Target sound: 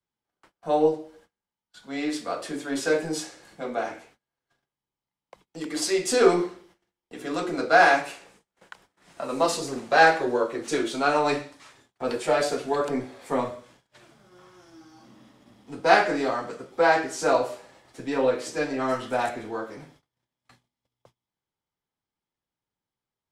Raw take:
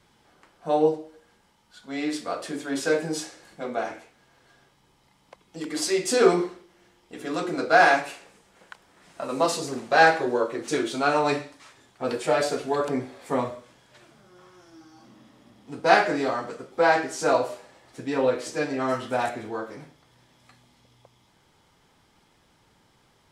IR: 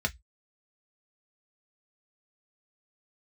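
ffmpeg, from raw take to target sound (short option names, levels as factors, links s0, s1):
-filter_complex "[0:a]agate=range=0.0355:threshold=0.00178:ratio=16:detection=peak,acrossover=split=180|420|2500[s0][s1][s2][s3];[s0]aeval=exprs='clip(val(0),-1,0.00316)':c=same[s4];[s4][s1][s2][s3]amix=inputs=4:normalize=0"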